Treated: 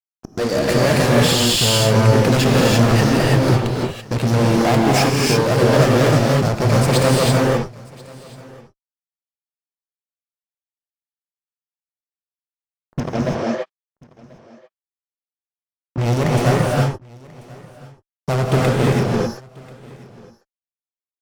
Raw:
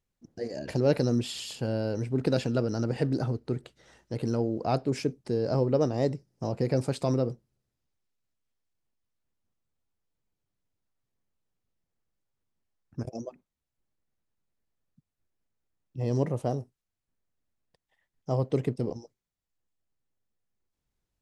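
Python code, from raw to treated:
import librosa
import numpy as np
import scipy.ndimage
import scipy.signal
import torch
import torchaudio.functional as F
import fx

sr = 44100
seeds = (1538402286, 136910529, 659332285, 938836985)

p1 = fx.dynamic_eq(x, sr, hz=390.0, q=1.2, threshold_db=-40.0, ratio=4.0, max_db=-4)
p2 = fx.fuzz(p1, sr, gain_db=39.0, gate_db=-47.0)
p3 = fx.bandpass_edges(p2, sr, low_hz=170.0, high_hz=3800.0, at=(13.0, 15.98))
p4 = p3 + fx.echo_single(p3, sr, ms=1037, db=-23.5, dry=0)
p5 = fx.rev_gated(p4, sr, seeds[0], gate_ms=360, shape='rising', drr_db=-3.5)
y = p5 * librosa.db_to_amplitude(-3.0)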